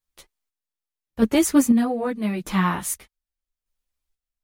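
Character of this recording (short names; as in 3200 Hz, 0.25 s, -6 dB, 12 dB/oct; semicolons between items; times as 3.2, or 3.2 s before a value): chopped level 0.82 Hz, depth 60%, duty 40%; a shimmering, thickened sound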